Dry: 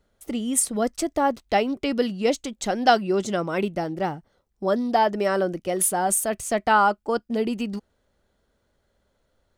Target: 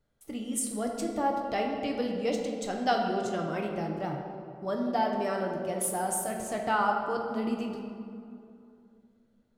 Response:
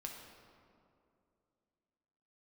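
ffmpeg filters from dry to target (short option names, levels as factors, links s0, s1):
-filter_complex "[0:a]equalizer=f=130:t=o:w=0.39:g=10.5[s0];[1:a]atrim=start_sample=2205[s1];[s0][s1]afir=irnorm=-1:irlink=0,volume=0.562"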